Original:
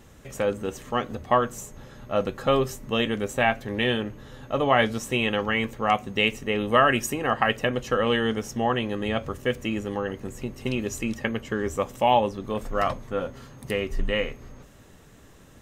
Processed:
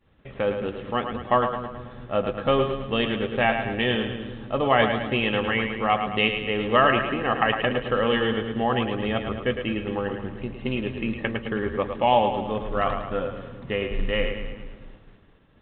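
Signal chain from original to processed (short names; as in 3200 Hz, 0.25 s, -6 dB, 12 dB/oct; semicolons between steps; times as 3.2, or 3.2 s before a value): split-band echo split 350 Hz, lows 0.207 s, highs 0.108 s, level -7 dB; expander -42 dBFS; µ-law 64 kbps 8000 Hz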